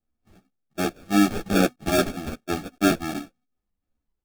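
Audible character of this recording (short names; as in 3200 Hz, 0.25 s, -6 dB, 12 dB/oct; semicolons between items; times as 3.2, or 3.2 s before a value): phasing stages 6, 2.6 Hz, lowest notch 380–3800 Hz; aliases and images of a low sample rate 1000 Hz, jitter 0%; a shimmering, thickened sound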